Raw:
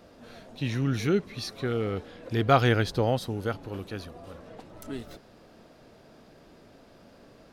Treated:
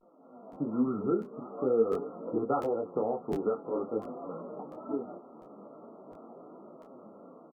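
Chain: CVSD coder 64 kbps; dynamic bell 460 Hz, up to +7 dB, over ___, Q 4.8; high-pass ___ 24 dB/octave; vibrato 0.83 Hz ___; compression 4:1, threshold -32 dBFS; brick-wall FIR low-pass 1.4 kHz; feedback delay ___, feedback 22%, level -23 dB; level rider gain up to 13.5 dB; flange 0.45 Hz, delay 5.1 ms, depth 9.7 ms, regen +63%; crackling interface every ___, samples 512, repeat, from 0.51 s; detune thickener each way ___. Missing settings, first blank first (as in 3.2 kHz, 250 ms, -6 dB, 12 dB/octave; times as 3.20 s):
-44 dBFS, 200 Hz, 97 cents, 70 ms, 0.70 s, 17 cents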